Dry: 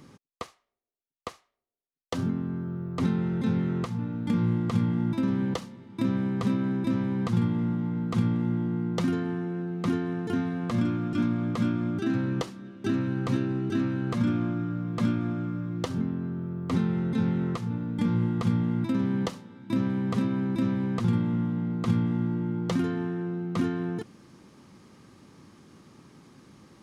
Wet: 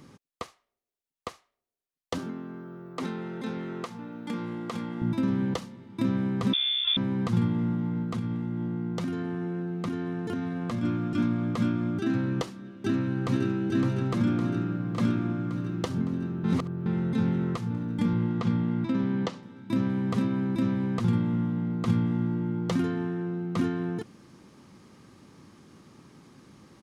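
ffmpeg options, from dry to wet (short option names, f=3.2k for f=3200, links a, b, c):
-filter_complex "[0:a]asettb=1/sr,asplit=3[a][b][c];[a]atrim=end=2.184[d];[b]atrim=start=2.18:end=5.02,asetpts=PTS-STARTPTS,afade=t=in:d=0.004:c=qsin,afade=t=out:st=2.836:d=0.004:c=qsin,highpass=330[e];[c]atrim=start=5.016[f];[d][e]acrossfade=d=0.004:c1=hsin:c2=qsin[g];[g][f]acrossfade=d=0.004:c1=qsin:c2=hsin,asettb=1/sr,asplit=3[h][i][j];[h]atrim=end=6.534[k];[i]atrim=start=6.53:end=6.97,asetpts=PTS-STARTPTS,afade=t=in:d=0.004:c=qsin,afade=t=out:st=0.436:d=0.004:c=qsin,lowpass=f=3.1k:t=q:w=0.5098,lowpass=f=3.1k:t=q:w=0.6013,lowpass=f=3.1k:t=q:w=0.9,lowpass=f=3.1k:t=q:w=2.563,afreqshift=-3700[l];[j]atrim=start=6.966[m];[k][l]acrossfade=d=0.004:c1=hsin:c2=qsin[n];[n][m]acrossfade=d=0.004:c1=qsin:c2=hsin,asplit=3[o][p][q];[o]afade=t=out:st=8.02:d=0.02[r];[p]acompressor=threshold=-27dB:ratio=5:attack=3.2:release=140:knee=1:detection=peak,afade=t=in:st=8.02:d=0.02,afade=t=out:st=10.82:d=0.02[s];[q]afade=t=in:st=10.82:d=0.02[t];[r][s][t]amix=inputs=3:normalize=0,asplit=2[u][v];[v]afade=t=in:st=12.65:d=0.01,afade=t=out:st=13.64:d=0.01,aecho=0:1:560|1120|1680|2240|2800|3360|3920|4480|5040|5600|6160|6720:0.530884|0.398163|0.298622|0.223967|0.167975|0.125981|0.094486|0.0708645|0.0531484|0.0398613|0.029896|0.022422[w];[u][w]amix=inputs=2:normalize=0,asettb=1/sr,asplit=3[x][y][z];[x]atrim=end=18.134[aa];[y]atrim=start=18.13:end=19.43,asetpts=PTS-STARTPTS,afade=t=in:d=0.004:c=qsin,afade=t=out:st=1.296:d=0.004:c=qsin,highpass=110,lowpass=5.4k[ab];[z]atrim=start=19.426[ac];[aa][ab]acrossfade=d=0.004:c1=hsin:c2=qsin[ad];[ad][ac]acrossfade=d=0.004:c1=qsin:c2=hsin,asplit=3[ae][af][ag];[ae]atrim=end=16.442[ah];[af]atrim=start=16.438:end=16.862,asetpts=PTS-STARTPTS,areverse[ai];[ag]atrim=start=16.858[aj];[ah][ai]acrossfade=d=0.004:c1=hsin:c2=hsin[ak];[ak][aj]acrossfade=d=0.004:c1=hsin:c2=hsin"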